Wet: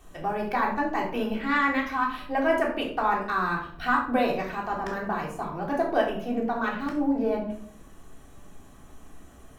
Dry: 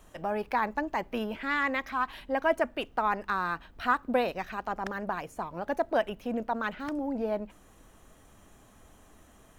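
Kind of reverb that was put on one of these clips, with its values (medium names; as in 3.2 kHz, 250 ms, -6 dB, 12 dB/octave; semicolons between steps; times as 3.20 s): simulated room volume 740 m³, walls furnished, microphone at 3.5 m; trim -1 dB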